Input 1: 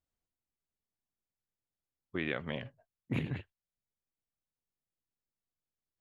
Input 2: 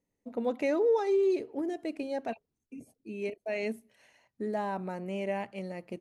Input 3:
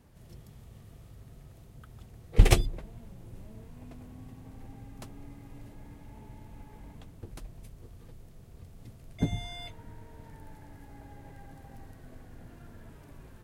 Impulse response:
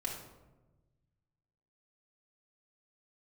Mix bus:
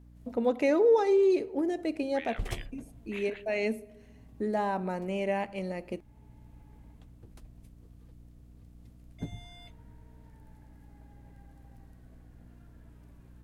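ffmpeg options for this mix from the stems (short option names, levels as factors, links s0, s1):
-filter_complex "[0:a]highpass=1200,alimiter=level_in=2.11:limit=0.0631:level=0:latency=1:release=114,volume=0.473,volume=1.19[s0];[1:a]agate=range=0.355:threshold=0.002:ratio=16:detection=peak,volume=1.33,asplit=3[s1][s2][s3];[s2]volume=0.158[s4];[2:a]aeval=exprs='val(0)+0.00708*(sin(2*PI*60*n/s)+sin(2*PI*2*60*n/s)/2+sin(2*PI*3*60*n/s)/3+sin(2*PI*4*60*n/s)/4+sin(2*PI*5*60*n/s)/5)':c=same,volume=0.335[s5];[s3]apad=whole_len=592355[s6];[s5][s6]sidechaincompress=threshold=0.0178:ratio=8:attack=16:release=906[s7];[3:a]atrim=start_sample=2205[s8];[s4][s8]afir=irnorm=-1:irlink=0[s9];[s0][s1][s7][s9]amix=inputs=4:normalize=0"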